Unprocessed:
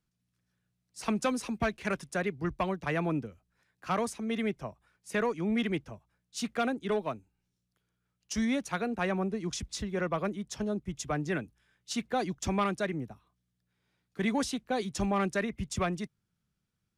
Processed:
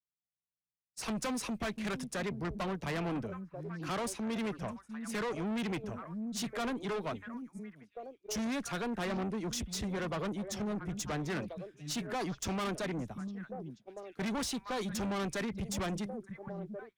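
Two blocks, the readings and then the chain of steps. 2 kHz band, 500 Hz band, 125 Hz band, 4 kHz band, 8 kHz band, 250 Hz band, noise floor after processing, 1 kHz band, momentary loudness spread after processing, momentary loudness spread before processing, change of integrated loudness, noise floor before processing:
−4.5 dB, −5.0 dB, −2.5 dB, −0.5 dB, 0.0 dB, −3.5 dB, below −85 dBFS, −5.0 dB, 9 LU, 9 LU, −4.5 dB, −82 dBFS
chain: echo through a band-pass that steps 692 ms, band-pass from 190 Hz, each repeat 1.4 octaves, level −10 dB
downward expander −47 dBFS
tube saturation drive 36 dB, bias 0.25
level +3.5 dB

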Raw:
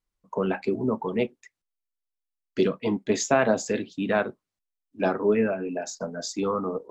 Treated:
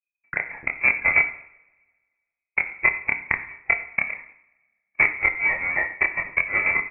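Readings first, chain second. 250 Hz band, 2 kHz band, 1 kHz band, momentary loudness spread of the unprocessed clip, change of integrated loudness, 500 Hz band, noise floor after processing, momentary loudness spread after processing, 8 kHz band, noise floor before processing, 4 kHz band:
−17.5 dB, +15.0 dB, −2.0 dB, 10 LU, +5.0 dB, −14.5 dB, below −85 dBFS, 10 LU, below −40 dB, below −85 dBFS, below −30 dB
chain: each half-wave held at its own peak
noise gate −39 dBFS, range −25 dB
transient designer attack +12 dB, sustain −5 dB
parametric band 940 Hz −14 dB 0.34 octaves
in parallel at −2 dB: downward compressor 20 to 1, threshold −19 dBFS, peak gain reduction 17.5 dB
on the sum: low-shelf EQ 140 Hz +3 dB
gate with flip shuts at −4 dBFS, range −30 dB
chorus effect 1.1 Hz, depth 6.4 ms
on a send: single-tap delay 91 ms −21 dB
on the sum: coupled-rooms reverb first 0.62 s, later 1.6 s, from −21 dB, DRR 7 dB
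voice inversion scrambler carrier 2,500 Hz

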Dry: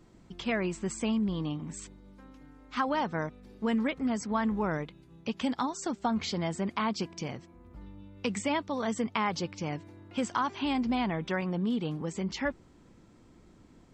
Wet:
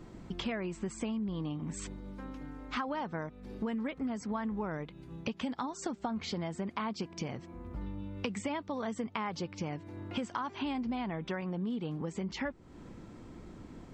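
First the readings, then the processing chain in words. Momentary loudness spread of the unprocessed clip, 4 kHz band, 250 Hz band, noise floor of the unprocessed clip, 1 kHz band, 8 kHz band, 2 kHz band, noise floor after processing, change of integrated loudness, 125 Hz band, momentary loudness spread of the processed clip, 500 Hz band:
11 LU, −5.0 dB, −5.0 dB, −58 dBFS, −6.0 dB, −5.5 dB, −6.0 dB, −52 dBFS, −5.5 dB, −3.0 dB, 10 LU, −5.0 dB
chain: high-shelf EQ 3,600 Hz −7 dB
downward compressor 5 to 1, threshold −43 dBFS, peak gain reduction 16 dB
level +8.5 dB

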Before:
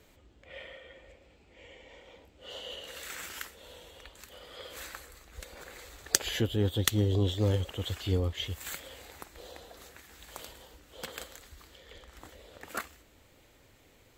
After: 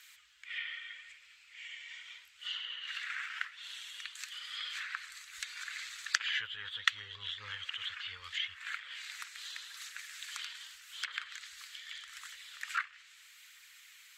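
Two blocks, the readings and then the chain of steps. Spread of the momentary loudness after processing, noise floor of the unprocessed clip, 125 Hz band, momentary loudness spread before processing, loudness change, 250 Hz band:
17 LU, −61 dBFS, −32.0 dB, 23 LU, −7.0 dB, below −40 dB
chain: phase shifter 0.81 Hz, delay 4.4 ms, feedback 26%
inverse Chebyshev high-pass filter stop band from 740 Hz, stop band 40 dB
treble cut that deepens with the level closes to 1,900 Hz, closed at −40.5 dBFS
level +9 dB

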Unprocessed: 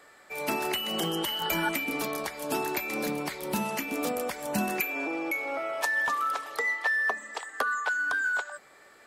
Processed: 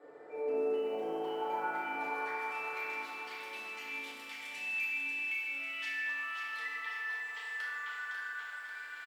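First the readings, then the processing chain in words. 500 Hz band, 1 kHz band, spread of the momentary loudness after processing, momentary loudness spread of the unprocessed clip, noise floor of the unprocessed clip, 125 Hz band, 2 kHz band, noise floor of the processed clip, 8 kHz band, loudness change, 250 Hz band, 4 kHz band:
−4.5 dB, −7.5 dB, 8 LU, 6 LU, −56 dBFS, below −20 dB, −7.5 dB, −47 dBFS, −19.0 dB, −7.5 dB, −15.5 dB, −13.5 dB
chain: gain on a spectral selection 0:03.88–0:06.04, 280–1,500 Hz −11 dB
downward compressor 5 to 1, threshold −45 dBFS, peak gain reduction 19 dB
band-pass filter sweep 450 Hz → 3,000 Hz, 0:00.47–0:03.05
on a send: repeating echo 892 ms, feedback 16%, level −16 dB
on the sum: feedback delay network reverb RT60 2.9 s, high-frequency decay 0.35×, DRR −9.5 dB
feedback echo at a low word length 544 ms, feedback 55%, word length 11 bits, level −6.5 dB
level +2.5 dB

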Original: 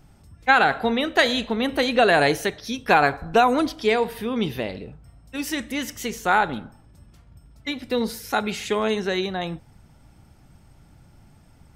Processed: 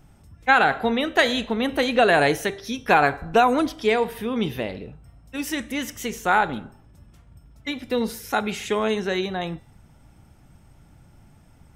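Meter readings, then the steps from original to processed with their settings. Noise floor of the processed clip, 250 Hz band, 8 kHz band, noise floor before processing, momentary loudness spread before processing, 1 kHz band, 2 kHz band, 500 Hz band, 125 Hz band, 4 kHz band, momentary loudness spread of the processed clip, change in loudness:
−53 dBFS, 0.0 dB, −0.5 dB, −53 dBFS, 14 LU, 0.0 dB, 0.0 dB, 0.0 dB, 0.0 dB, −1.5 dB, 14 LU, 0.0 dB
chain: parametric band 4,500 Hz −5.5 dB 0.34 octaves
hum removal 393.2 Hz, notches 26

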